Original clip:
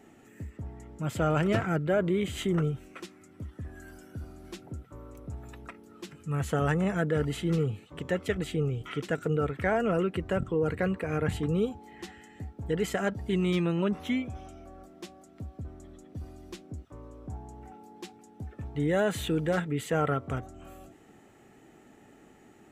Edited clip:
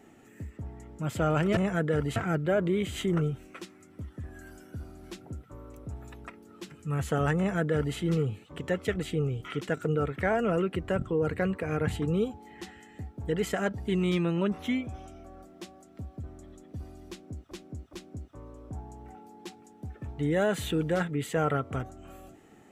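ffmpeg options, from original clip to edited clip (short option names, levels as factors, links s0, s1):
-filter_complex "[0:a]asplit=5[s0][s1][s2][s3][s4];[s0]atrim=end=1.572[s5];[s1]atrim=start=6.788:end=7.382[s6];[s2]atrim=start=1.568:end=16.922[s7];[s3]atrim=start=16.498:end=16.922[s8];[s4]atrim=start=16.498[s9];[s5][s6]acrossfade=d=0.004:c1=hsin:c2=hsin[s10];[s10][s7]acrossfade=d=0.004:c1=hsin:c2=hsin[s11];[s11][s8]acrossfade=d=0.004:c1=hsin:c2=hsin[s12];[s12][s9]acrossfade=d=0.004:c1=hsin:c2=hsin"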